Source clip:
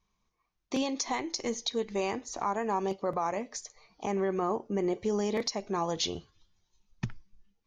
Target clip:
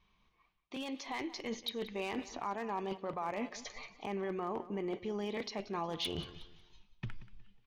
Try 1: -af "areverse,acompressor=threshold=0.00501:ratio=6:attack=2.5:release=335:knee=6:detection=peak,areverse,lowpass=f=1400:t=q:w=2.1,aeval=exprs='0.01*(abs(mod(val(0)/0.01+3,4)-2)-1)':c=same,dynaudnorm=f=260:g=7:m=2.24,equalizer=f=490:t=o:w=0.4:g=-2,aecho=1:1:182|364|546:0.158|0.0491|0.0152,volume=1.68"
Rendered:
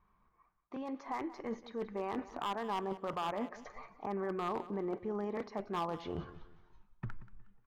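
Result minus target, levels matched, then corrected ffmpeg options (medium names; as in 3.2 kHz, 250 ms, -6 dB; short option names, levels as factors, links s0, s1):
4 kHz band -9.0 dB
-af "areverse,acompressor=threshold=0.00501:ratio=6:attack=2.5:release=335:knee=6:detection=peak,areverse,lowpass=f=3100:t=q:w=2.1,aeval=exprs='0.01*(abs(mod(val(0)/0.01+3,4)-2)-1)':c=same,dynaudnorm=f=260:g=7:m=2.24,equalizer=f=490:t=o:w=0.4:g=-2,aecho=1:1:182|364|546:0.158|0.0491|0.0152,volume=1.68"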